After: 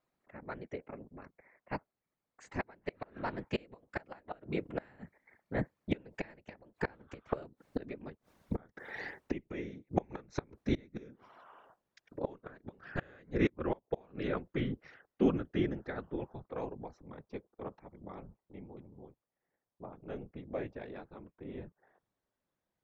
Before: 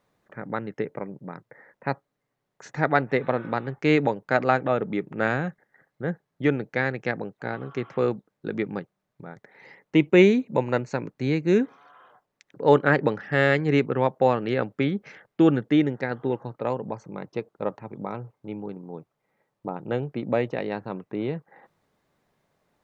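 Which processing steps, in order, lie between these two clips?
Doppler pass-by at 8.17, 28 m/s, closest 9.7 m; flipped gate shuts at -33 dBFS, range -29 dB; whisperiser; gain +14.5 dB

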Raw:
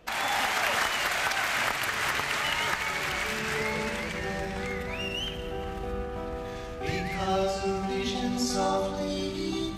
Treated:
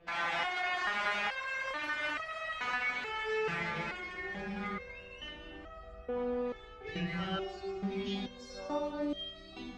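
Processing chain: LPF 3100 Hz 12 dB/oct; stepped resonator 2.3 Hz 170–640 Hz; gain +8.5 dB

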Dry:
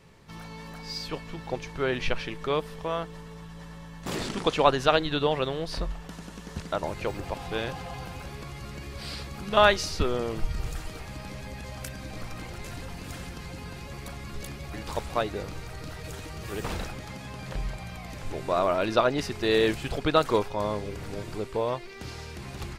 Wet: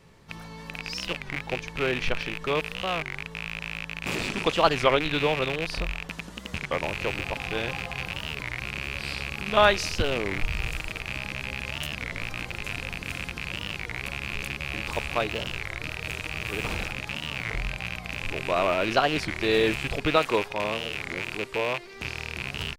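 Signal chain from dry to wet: rattling part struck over -39 dBFS, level -18 dBFS; 20.16–21.93 low shelf 130 Hz -10.5 dB; record warp 33 1/3 rpm, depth 250 cents

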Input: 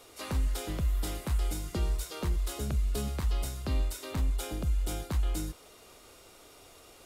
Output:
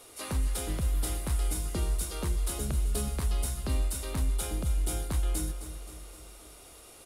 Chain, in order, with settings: bell 10000 Hz +10 dB 0.5 oct; on a send: feedback echo 0.262 s, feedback 56%, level -11.5 dB

